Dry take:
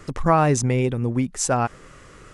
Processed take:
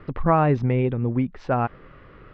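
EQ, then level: low-pass 4.6 kHz 24 dB/octave; distance through air 370 m; 0.0 dB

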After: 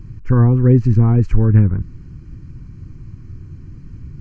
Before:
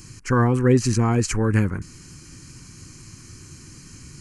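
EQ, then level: RIAA curve playback; tape spacing loss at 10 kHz 21 dB; -2.5 dB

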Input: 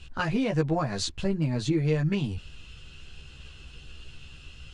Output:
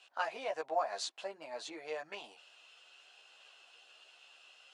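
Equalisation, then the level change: ladder high-pass 600 Hz, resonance 55%; +1.5 dB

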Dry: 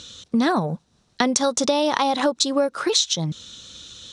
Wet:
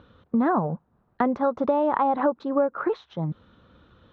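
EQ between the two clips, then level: four-pole ladder low-pass 1.6 kHz, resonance 25%; +3.5 dB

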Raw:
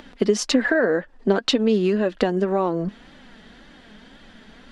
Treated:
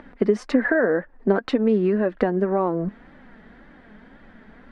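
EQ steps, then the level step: distance through air 99 m; high-order bell 4.5 kHz -12.5 dB; 0.0 dB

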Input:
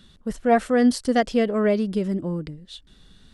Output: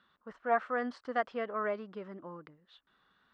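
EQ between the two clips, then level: band-pass filter 1.2 kHz, Q 2.4; distance through air 120 m; 0.0 dB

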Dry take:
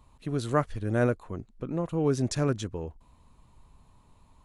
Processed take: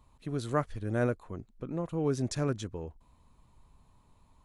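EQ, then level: band-stop 2.8 kHz, Q 29; -4.0 dB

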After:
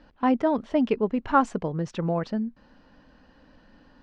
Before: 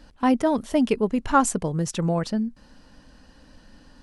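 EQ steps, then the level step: distance through air 160 m; bass shelf 150 Hz -8.5 dB; treble shelf 4.7 kHz -8.5 dB; 0.0 dB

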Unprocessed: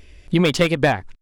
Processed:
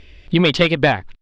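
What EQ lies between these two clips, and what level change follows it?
resonant low-pass 3.7 kHz, resonance Q 1.6; +1.5 dB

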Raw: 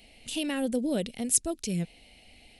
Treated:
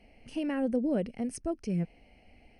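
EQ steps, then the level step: boxcar filter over 12 samples; 0.0 dB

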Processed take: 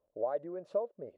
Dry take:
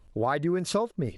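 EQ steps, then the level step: band-pass filter 570 Hz, Q 5.7; 0.0 dB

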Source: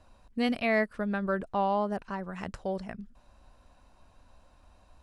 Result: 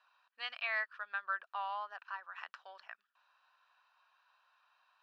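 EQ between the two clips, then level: high-pass 1.2 kHz 24 dB/octave; distance through air 280 m; band-stop 2.1 kHz, Q 5.4; +2.5 dB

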